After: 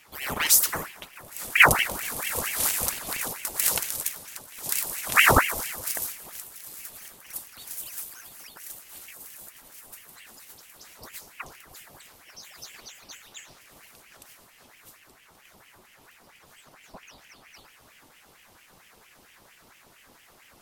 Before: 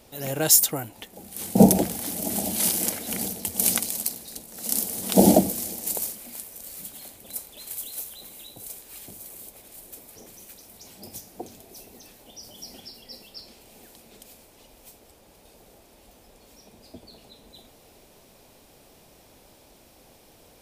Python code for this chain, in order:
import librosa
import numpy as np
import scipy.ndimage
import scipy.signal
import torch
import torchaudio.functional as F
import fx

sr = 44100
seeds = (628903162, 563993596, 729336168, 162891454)

y = fx.rev_plate(x, sr, seeds[0], rt60_s=1.7, hf_ratio=0.55, predelay_ms=0, drr_db=13.5)
y = fx.ring_lfo(y, sr, carrier_hz=1400.0, swing_pct=80, hz=4.4)
y = y * librosa.db_to_amplitude(1.0)